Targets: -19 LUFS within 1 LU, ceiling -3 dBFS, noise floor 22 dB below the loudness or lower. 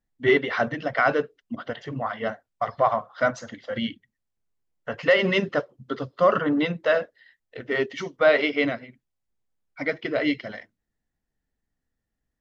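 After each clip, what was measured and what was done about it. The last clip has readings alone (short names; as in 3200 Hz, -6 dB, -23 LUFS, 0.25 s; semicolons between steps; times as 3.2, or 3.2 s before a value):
loudness -24.5 LUFS; peak -7.0 dBFS; loudness target -19.0 LUFS
-> gain +5.5 dB; limiter -3 dBFS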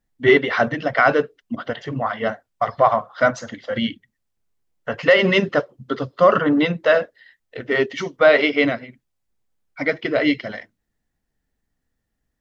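loudness -19.5 LUFS; peak -3.0 dBFS; noise floor -77 dBFS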